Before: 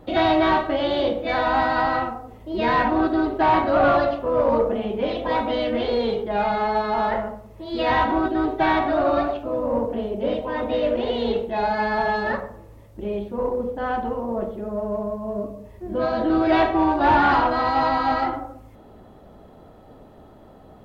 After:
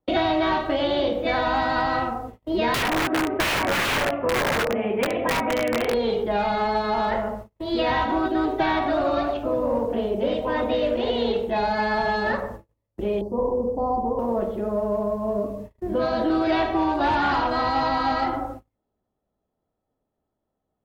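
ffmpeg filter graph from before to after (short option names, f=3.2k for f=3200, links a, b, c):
-filter_complex "[0:a]asettb=1/sr,asplit=3[a][b][c];[a]atrim=end=2.744[d];[b]atrim=start=2.74:end=5.94,asetpts=PTS-STARTPTS,afade=t=in:d=0.004:c=qsin,afade=t=out:st=3.196:d=0.004:c=qsin,highpass=f=80:w=0.5412,highpass=f=80:w=1.3066,highshelf=f=3.2k:t=q:w=3:g=-11.5,aeval=exprs='(mod(5.31*val(0)+1,2)-1)/5.31':c=same[e];[c]atrim=start=5.936[f];[d][e]acrossfade=d=0.004:c1=hsin:c2=qsin[g];[g][f]acrossfade=d=0.004:c1=qsin:c2=hsin,asettb=1/sr,asplit=3[h][i][j];[h]atrim=end=13.214[k];[i]atrim=start=13.21:end=14.19,asetpts=PTS-STARTPTS,afade=t=in:d=0.004:c=qsin,afade=t=out:st=0.976:d=0.004:c=qsin,asuperstop=centerf=2300:order=20:qfactor=0.67,highshelf=f=3.6k:g=-11[l];[j]atrim=start=14.186[m];[k][l]acrossfade=d=0.004:c1=hsin:c2=qsin[n];[n][m]acrossfade=d=0.004:c1=qsin:c2=hsin,agate=range=-38dB:threshold=-39dB:ratio=16:detection=peak,acrossover=split=280|3100[o][p][q];[o]acompressor=threshold=-37dB:ratio=4[r];[p]acompressor=threshold=-27dB:ratio=4[s];[q]acompressor=threshold=-41dB:ratio=4[t];[r][s][t]amix=inputs=3:normalize=0,volume=5dB"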